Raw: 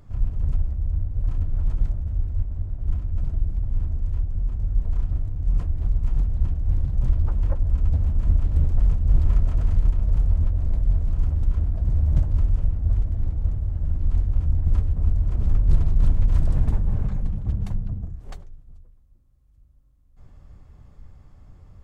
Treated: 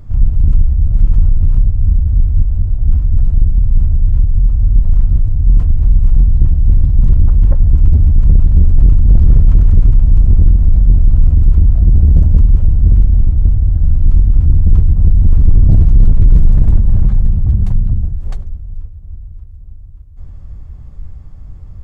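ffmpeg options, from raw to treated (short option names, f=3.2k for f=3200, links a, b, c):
-filter_complex "[0:a]asplit=3[a][b][c];[a]afade=t=out:st=8.79:d=0.02[d];[b]aecho=1:1:178:0.376,afade=t=in:st=8.79:d=0.02,afade=t=out:st=13.22:d=0.02[e];[c]afade=t=in:st=13.22:d=0.02[f];[d][e][f]amix=inputs=3:normalize=0,asplit=2[g][h];[h]afade=t=in:st=14.58:d=0.01,afade=t=out:st=15.23:d=0.01,aecho=0:1:580|1160|1740|2320|2900|3480|4060|4640|5220|5800|6380:0.749894|0.487431|0.31683|0.20594|0.133861|0.0870095|0.0565562|0.0367615|0.023895|0.0155317|0.0100956[i];[g][i]amix=inputs=2:normalize=0,asplit=3[j][k][l];[j]atrim=end=0.872[m];[k]atrim=start=0.868:end=1.992,asetpts=PTS-STARTPTS,areverse[n];[l]atrim=start=1.988[o];[m][n]acrossfade=d=0.004:c1=hsin:c2=hsin[p];[p][o]acrossfade=d=0.004:c1=hsin:c2=hsin,lowshelf=f=160:g=12,acontrast=66,volume=-1dB"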